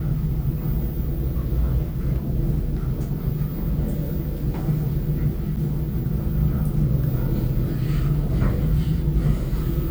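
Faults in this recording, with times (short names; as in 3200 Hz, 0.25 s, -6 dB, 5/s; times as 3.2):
5.56–5.57 gap 8.1 ms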